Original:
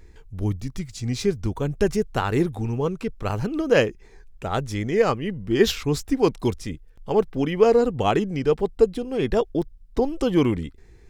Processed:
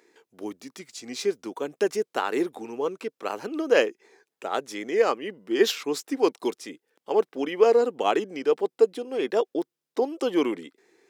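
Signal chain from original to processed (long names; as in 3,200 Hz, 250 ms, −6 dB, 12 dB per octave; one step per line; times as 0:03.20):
high-pass filter 300 Hz 24 dB per octave
level −1.5 dB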